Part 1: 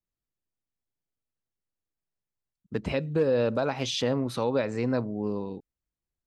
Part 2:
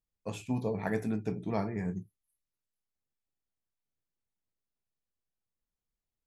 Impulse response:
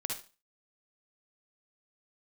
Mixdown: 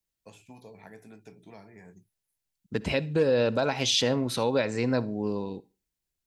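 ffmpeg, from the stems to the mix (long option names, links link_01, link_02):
-filter_complex "[0:a]volume=-0.5dB,asplit=2[link_01][link_02];[link_02]volume=-19dB[link_03];[1:a]acrossover=split=390|1700[link_04][link_05][link_06];[link_04]acompressor=threshold=-44dB:ratio=4[link_07];[link_05]acompressor=threshold=-41dB:ratio=4[link_08];[link_06]acompressor=threshold=-55dB:ratio=4[link_09];[link_07][link_08][link_09]amix=inputs=3:normalize=0,volume=-9dB[link_10];[2:a]atrim=start_sample=2205[link_11];[link_03][link_11]afir=irnorm=-1:irlink=0[link_12];[link_01][link_10][link_12]amix=inputs=3:normalize=0,highshelf=frequency=2000:gain=8,bandreject=frequency=1200:width=8.7"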